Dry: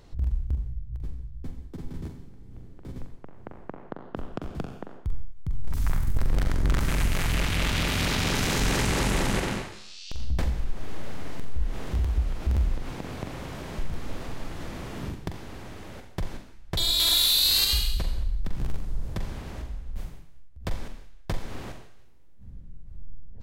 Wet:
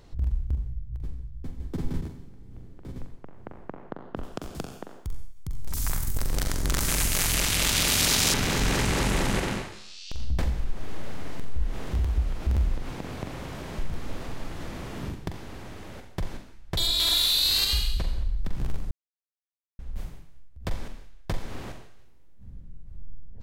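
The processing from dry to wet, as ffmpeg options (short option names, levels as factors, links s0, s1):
-filter_complex "[0:a]asettb=1/sr,asplit=3[s0][s1][s2];[s0]atrim=end=4.234[s3];[s1]atrim=start=4.23:end=8.34,asetpts=PTS-STARTPTS,afade=t=in:d=0.004:c=qsin,afade=t=out:st=4.106:d=0.004:c=qsin,bass=f=250:g=-4,treble=f=4000:g=14[s4];[s2]atrim=start=8.336[s5];[s3][s4]acrossfade=d=0.004:c1=hsin:c2=qsin[s6];[s6][s5]acrossfade=d=0.004:c1=qsin:c2=hsin,asettb=1/sr,asplit=3[s7][s8][s9];[s7]atrim=end=16.874[s10];[s8]atrim=start=16.87:end=18.4,asetpts=PTS-STARTPTS,afade=t=in:d=0.004:c=qsin,afade=t=out:st=1.526:d=0.004:c=qsin,highshelf=f=8200:g=-7[s11];[s9]atrim=start=18.396[s12];[s10][s11]acrossfade=d=0.004:c1=hsin:c2=qsin[s13];[s13][s12]acrossfade=d=0.004:c1=qsin:c2=hsin,asplit=5[s14][s15][s16][s17][s18];[s14]atrim=end=1.602[s19];[s15]atrim=start=1.598:end=2.012,asetpts=PTS-STARTPTS,volume=2.24[s20];[s16]atrim=start=2.008:end=18.91,asetpts=PTS-STARTPTS,afade=t=out:st=16.898:d=0.004:c=hsin[s21];[s17]atrim=start=18.91:end=19.79,asetpts=PTS-STARTPTS,volume=0[s22];[s18]atrim=start=19.79,asetpts=PTS-STARTPTS,afade=t=in:d=0.004:c=hsin[s23];[s19][s20]acrossfade=d=0.004:c1=hsin:c2=hsin[s24];[s21][s22][s23]concat=n=3:v=0:a=1[s25];[s24][s25]acrossfade=d=0.004:c1=hsin:c2=hsin"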